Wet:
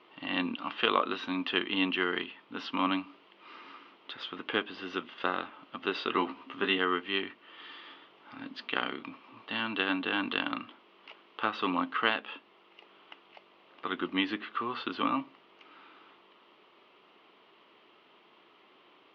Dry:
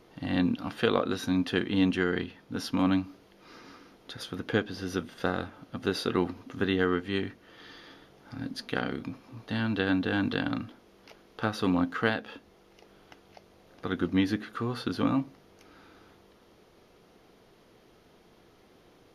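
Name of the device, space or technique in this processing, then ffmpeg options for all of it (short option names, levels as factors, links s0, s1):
phone earpiece: -filter_complex "[0:a]highpass=470,equalizer=f=490:t=q:w=4:g=-9,equalizer=f=720:t=q:w=4:g=-7,equalizer=f=1100:t=q:w=4:g=4,equalizer=f=1600:t=q:w=4:g=-6,equalizer=f=2900:t=q:w=4:g=6,lowpass=f=3300:w=0.5412,lowpass=f=3300:w=1.3066,asettb=1/sr,asplit=3[s0][s1][s2];[s0]atrim=end=6.134[s3];[s1]atrim=start=6.13:end=6.78,asetpts=PTS-STARTPTS,afade=t=in:d=0.004:c=qsin,afade=t=out:st=0.646:d=0.004:c=qsin,asplit=2[s4][s5];[s5]adelay=15,volume=0.531[s6];[s4][s6]amix=inputs=2:normalize=0,atrim=end_sample=28665[s7];[s2]atrim=start=6.776[s8];[s3][s7]acrossfade=d=0.004:c1=hsin:c2=qsin[s9];[s9][s8]acrossfade=d=0.004:c1=qsin:c2=hsin,volume=1.58"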